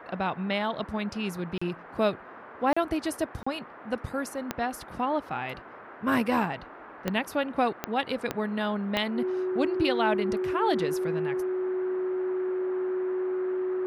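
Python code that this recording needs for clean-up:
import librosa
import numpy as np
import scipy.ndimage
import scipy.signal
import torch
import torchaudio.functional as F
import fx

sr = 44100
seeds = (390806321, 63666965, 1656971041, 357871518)

y = fx.fix_declick_ar(x, sr, threshold=10.0)
y = fx.notch(y, sr, hz=370.0, q=30.0)
y = fx.fix_interpolate(y, sr, at_s=(1.58, 2.73, 3.43), length_ms=35.0)
y = fx.noise_reduce(y, sr, print_start_s=5.53, print_end_s=6.03, reduce_db=28.0)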